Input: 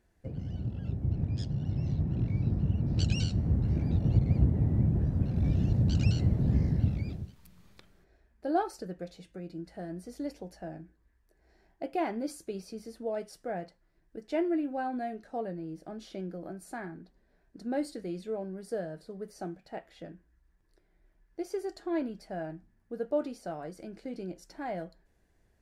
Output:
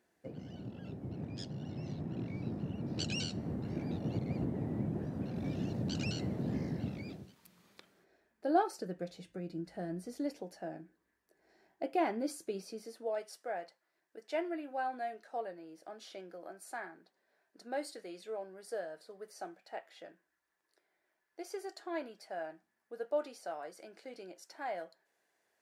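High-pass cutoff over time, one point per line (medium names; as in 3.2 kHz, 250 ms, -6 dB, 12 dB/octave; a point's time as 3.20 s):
8.66 s 250 Hz
9.19 s 100 Hz
9.92 s 100 Hz
10.46 s 240 Hz
12.61 s 240 Hz
13.22 s 600 Hz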